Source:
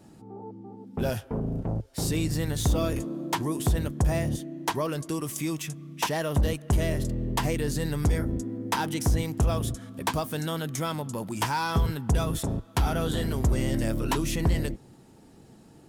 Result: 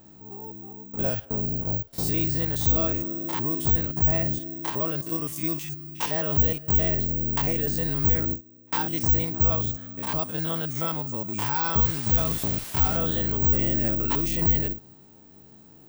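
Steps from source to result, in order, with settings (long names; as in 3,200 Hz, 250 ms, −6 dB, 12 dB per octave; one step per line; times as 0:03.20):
spectrum averaged block by block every 50 ms
0:07.66–0:08.79: noise gate with hold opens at −21 dBFS
bad sample-rate conversion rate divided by 2×, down filtered, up zero stuff
0:11.80–0:12.96: background noise white −38 dBFS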